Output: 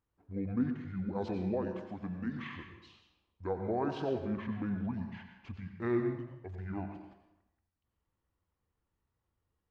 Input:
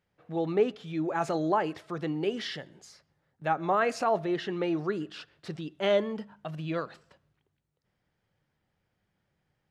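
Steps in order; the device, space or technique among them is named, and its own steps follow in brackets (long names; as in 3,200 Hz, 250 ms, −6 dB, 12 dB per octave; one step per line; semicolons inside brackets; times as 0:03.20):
0:01.53–0:02.51: high-pass filter 220 Hz 12 dB per octave
monster voice (pitch shifter −9 semitones; low-shelf EQ 160 Hz +3.5 dB; convolution reverb RT60 0.85 s, pre-delay 83 ms, DRR 5.5 dB)
level −8 dB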